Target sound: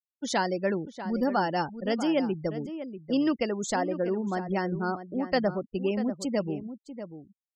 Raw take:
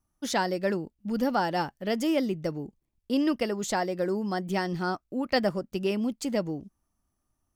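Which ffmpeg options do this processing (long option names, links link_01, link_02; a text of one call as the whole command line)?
ffmpeg -i in.wav -filter_complex "[0:a]asettb=1/sr,asplit=3[link_01][link_02][link_03];[link_01]atrim=end=3.764[link_04];[link_02]atrim=start=3.76:end=6.2,asetpts=PTS-STARTPTS,afade=type=in:duration=0.004:curve=qsin,afade=type=out:start_time=2.436:duration=0.004:curve=qsin,highshelf=frequency=2500:gain=-5.5[link_05];[link_03]atrim=start=6.196[link_06];[link_04][link_05]acrossfade=duration=0.004:curve1=hsin:curve2=qsin[link_07];[link_07][link_06]acrossfade=duration=0.004:curve1=qsin:curve2=hsin,afftfilt=real='re*gte(hypot(re,im),0.0158)':imag='im*gte(hypot(re,im),0.0158)':win_size=1024:overlap=0.75,asplit=2[link_08][link_09];[link_09]adelay=641.4,volume=-11dB,highshelf=frequency=4000:gain=-14.4[link_10];[link_08][link_10]amix=inputs=2:normalize=0" out.wav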